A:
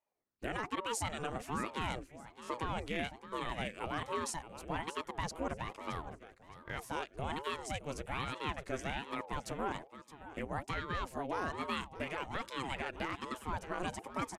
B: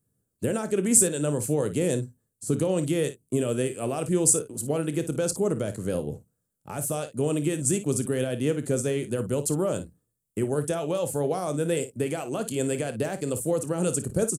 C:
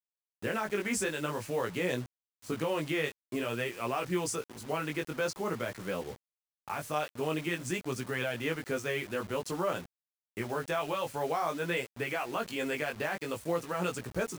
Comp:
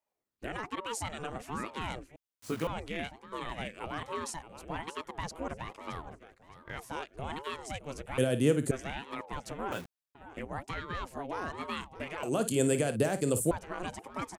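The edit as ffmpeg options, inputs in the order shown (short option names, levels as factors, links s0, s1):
-filter_complex "[2:a]asplit=2[s0][s1];[1:a]asplit=2[s2][s3];[0:a]asplit=5[s4][s5][s6][s7][s8];[s4]atrim=end=2.162[s9];[s0]atrim=start=2.158:end=2.672[s10];[s5]atrim=start=2.668:end=8.182[s11];[s2]atrim=start=8.178:end=8.712[s12];[s6]atrim=start=8.708:end=9.722[s13];[s1]atrim=start=9.718:end=10.152[s14];[s7]atrim=start=10.148:end=12.232[s15];[s3]atrim=start=12.228:end=13.512[s16];[s8]atrim=start=13.508[s17];[s9][s10]acrossfade=d=0.004:c1=hsin:c2=hsin[s18];[s18][s11]acrossfade=d=0.004:c1=hsin:c2=hsin[s19];[s19][s12]acrossfade=d=0.004:c1=hsin:c2=hsin[s20];[s20][s13]acrossfade=d=0.004:c1=hsin:c2=hsin[s21];[s21][s14]acrossfade=d=0.004:c1=hsin:c2=hsin[s22];[s22][s15]acrossfade=d=0.004:c1=hsin:c2=hsin[s23];[s23][s16]acrossfade=d=0.004:c1=hsin:c2=hsin[s24];[s24][s17]acrossfade=d=0.004:c1=hsin:c2=hsin"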